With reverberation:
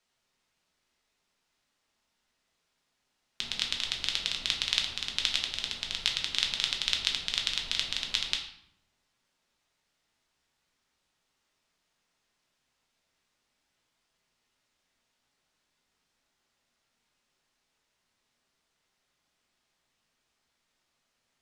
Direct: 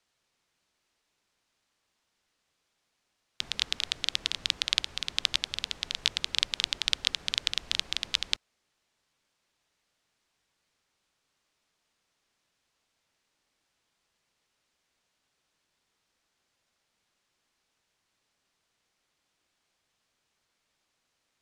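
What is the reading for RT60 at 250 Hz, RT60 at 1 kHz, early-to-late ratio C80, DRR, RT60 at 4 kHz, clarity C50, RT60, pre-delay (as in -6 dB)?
1.0 s, 0.75 s, 9.5 dB, 1.0 dB, 0.55 s, 7.0 dB, 0.70 s, 4 ms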